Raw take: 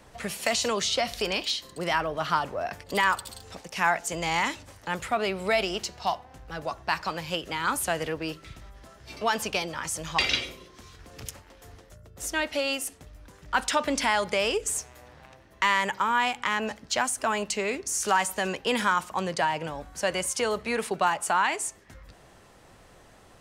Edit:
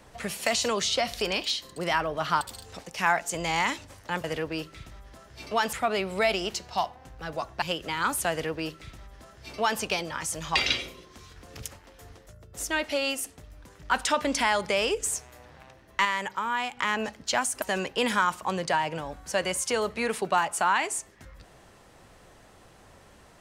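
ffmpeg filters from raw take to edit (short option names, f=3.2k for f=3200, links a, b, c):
-filter_complex "[0:a]asplit=8[a][b][c][d][e][f][g][h];[a]atrim=end=2.412[i];[b]atrim=start=3.188:end=5.022[j];[c]atrim=start=7.938:end=9.432[k];[d]atrim=start=5.018:end=6.912[l];[e]atrim=start=7.248:end=15.682[m];[f]atrim=start=15.678:end=16.402,asetpts=PTS-STARTPTS,volume=-4.5dB[n];[g]atrim=start=16.398:end=17.252[o];[h]atrim=start=18.308[p];[i][j]acrossfade=d=0.004:c1=hsin:c2=hsin[q];[q][k]acrossfade=d=0.004:c1=hsin:c2=hsin[r];[r][l]acrossfade=d=0.004:c1=hsin:c2=hsin[s];[s][m]acrossfade=d=0.004:c1=hsin:c2=hsin[t];[t][n]acrossfade=d=0.004:c1=hsin:c2=hsin[u];[u][o]acrossfade=d=0.004:c1=hsin:c2=hsin[v];[v][p]acrossfade=d=0.004:c1=hsin:c2=hsin"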